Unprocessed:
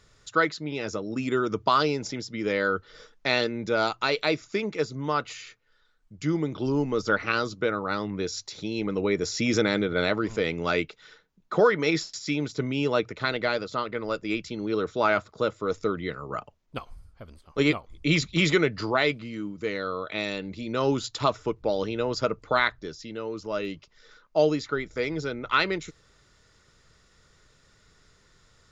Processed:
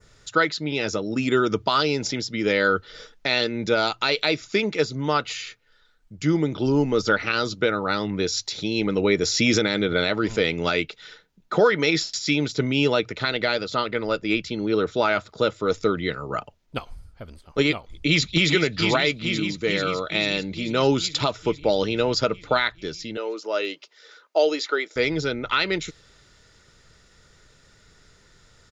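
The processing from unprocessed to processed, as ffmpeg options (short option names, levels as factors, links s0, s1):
-filter_complex "[0:a]asettb=1/sr,asplit=3[s0][s1][s2];[s0]atrim=end=14.074[s3];[s1]atrim=start=14.07:end=14.92,asetpts=PTS-STARTPTS,afade=t=in:d=0.004:c=qsin,afade=t=out:st=0.846:d=0.004:c=qsin,highshelf=f=4600:g=-6.5[s4];[s2]atrim=start=14.916[s5];[s3][s4]acrossfade=d=0.004:c1=hsin:c2=qsin[s6];[s6][s5]acrossfade=d=0.004:c1=qsin:c2=hsin,asplit=2[s7][s8];[s8]afade=t=in:st=17.92:d=0.01,afade=t=out:st=18.51:d=0.01,aecho=0:1:440|880|1320|1760|2200|2640|3080|3520|3960|4400|4840:0.398107|0.278675|0.195073|0.136551|0.0955855|0.0669099|0.0468369|0.0327858|0.0229501|0.0160651|0.0112455[s9];[s7][s9]amix=inputs=2:normalize=0,asettb=1/sr,asplit=3[s10][s11][s12];[s10]atrim=end=23.174[s13];[s11]atrim=start=23.17:end=24.96,asetpts=PTS-STARTPTS,afade=t=in:d=0.004:c=qsin,afade=t=out:st=1.786:d=0.004:c=qsin,highpass=f=340:w=0.5412,highpass=f=340:w=1.3066[s14];[s12]atrim=start=24.956[s15];[s13][s14]acrossfade=d=0.004:c1=hsin:c2=qsin[s16];[s16][s15]acrossfade=d=0.004:c1=qsin:c2=hsin,bandreject=f=1100:w=9.1,adynamicequalizer=threshold=0.00708:dfrequency=3600:dqfactor=0.96:tfrequency=3600:tqfactor=0.96:attack=5:release=100:ratio=0.375:range=3:mode=boostabove:tftype=bell,alimiter=limit=0.211:level=0:latency=1:release=188,volume=1.78"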